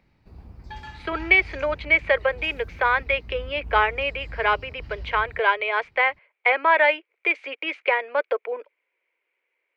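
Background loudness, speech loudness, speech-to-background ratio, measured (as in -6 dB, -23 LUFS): -41.5 LUFS, -22.5 LUFS, 19.0 dB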